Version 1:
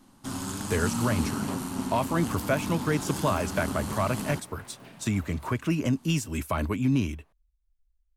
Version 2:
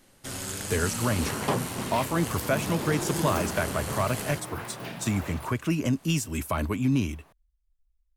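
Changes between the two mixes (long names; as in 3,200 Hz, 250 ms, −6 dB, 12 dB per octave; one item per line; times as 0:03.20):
first sound: add graphic EQ with 10 bands 250 Hz −11 dB, 500 Hz +10 dB, 1,000 Hz −10 dB, 2,000 Hz +8 dB
second sound +11.5 dB
master: add high-shelf EQ 6,200 Hz +5 dB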